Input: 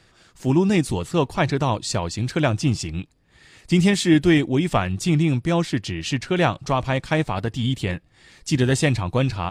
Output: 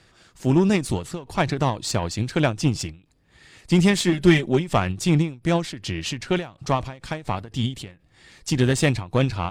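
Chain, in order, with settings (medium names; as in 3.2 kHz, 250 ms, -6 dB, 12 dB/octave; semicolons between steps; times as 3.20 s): 4.12–4.69 s: comb 5.1 ms, depth 71%; Chebyshev shaper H 8 -27 dB, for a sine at -3.5 dBFS; endings held to a fixed fall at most 170 dB/s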